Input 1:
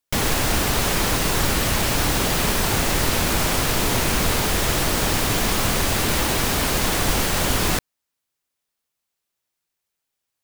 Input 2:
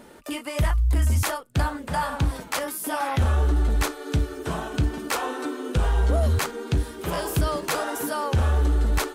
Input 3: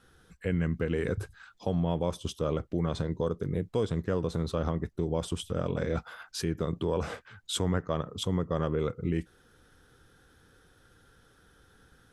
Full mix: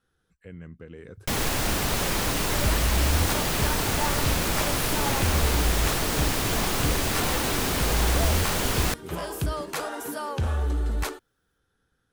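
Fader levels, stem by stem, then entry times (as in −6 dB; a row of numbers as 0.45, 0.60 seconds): −5.0, −5.0, −13.5 decibels; 1.15, 2.05, 0.00 seconds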